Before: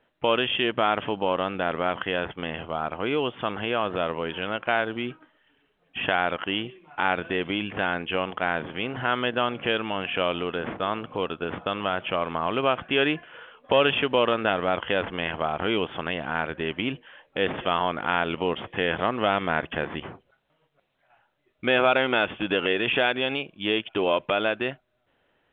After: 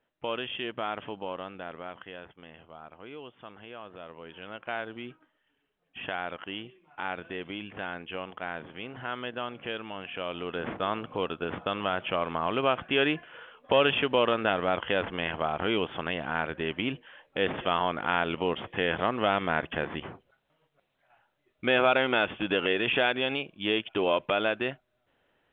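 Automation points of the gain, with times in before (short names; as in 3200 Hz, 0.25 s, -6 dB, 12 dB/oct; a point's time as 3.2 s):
1.11 s -10 dB
2.39 s -18 dB
4.02 s -18 dB
4.73 s -10 dB
10.23 s -10 dB
10.66 s -2.5 dB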